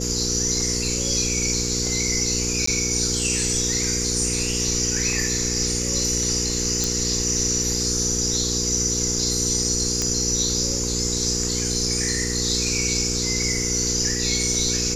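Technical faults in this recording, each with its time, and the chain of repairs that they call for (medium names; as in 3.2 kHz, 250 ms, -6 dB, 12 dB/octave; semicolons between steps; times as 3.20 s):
hum 60 Hz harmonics 8 -28 dBFS
2.66–2.67 s: dropout 14 ms
6.84 s: pop
10.02 s: pop -9 dBFS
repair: de-click; de-hum 60 Hz, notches 8; interpolate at 2.66 s, 14 ms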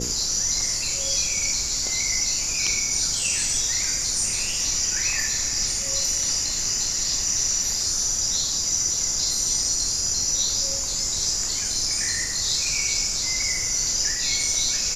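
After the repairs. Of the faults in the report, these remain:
nothing left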